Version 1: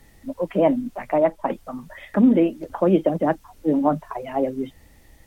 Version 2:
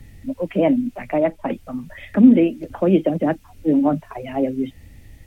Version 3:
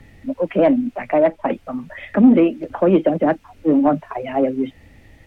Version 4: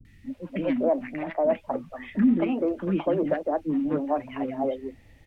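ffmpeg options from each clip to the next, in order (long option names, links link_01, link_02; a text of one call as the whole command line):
ffmpeg -i in.wav -filter_complex "[0:a]equalizer=frequency=100:width_type=o:width=0.67:gain=7,equalizer=frequency=250:width_type=o:width=0.67:gain=5,equalizer=frequency=1000:width_type=o:width=0.67:gain=-6,equalizer=frequency=2500:width_type=o:width=0.67:gain=6,acrossover=split=170|310|730[link_01][link_02][link_03][link_04];[link_01]acompressor=mode=upward:threshold=-33dB:ratio=2.5[link_05];[link_05][link_02][link_03][link_04]amix=inputs=4:normalize=0" out.wav
ffmpeg -i in.wav -filter_complex "[0:a]asplit=2[link_01][link_02];[link_02]highpass=frequency=720:poles=1,volume=15dB,asoftclip=type=tanh:threshold=-1.5dB[link_03];[link_01][link_03]amix=inputs=2:normalize=0,lowpass=frequency=1200:poles=1,volume=-6dB" out.wav
ffmpeg -i in.wav -filter_complex "[0:a]acrossover=split=330|1300[link_01][link_02][link_03];[link_03]adelay=50[link_04];[link_02]adelay=250[link_05];[link_01][link_05][link_04]amix=inputs=3:normalize=0,volume=-6.5dB" out.wav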